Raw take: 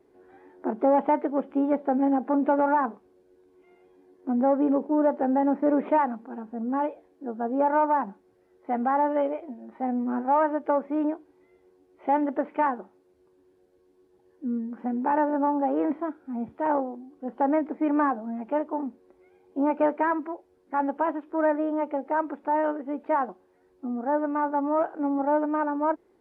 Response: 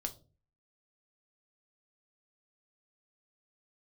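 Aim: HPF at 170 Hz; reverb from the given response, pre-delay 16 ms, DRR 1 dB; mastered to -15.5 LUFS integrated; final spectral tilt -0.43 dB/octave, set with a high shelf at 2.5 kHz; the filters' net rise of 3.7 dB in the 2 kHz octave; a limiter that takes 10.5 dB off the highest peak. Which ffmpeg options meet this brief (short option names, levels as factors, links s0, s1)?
-filter_complex "[0:a]highpass=170,equalizer=f=2000:t=o:g=7,highshelf=f=2500:g=-4.5,alimiter=limit=0.075:level=0:latency=1,asplit=2[s0][s1];[1:a]atrim=start_sample=2205,adelay=16[s2];[s1][s2]afir=irnorm=-1:irlink=0,volume=1[s3];[s0][s3]amix=inputs=2:normalize=0,volume=4.73"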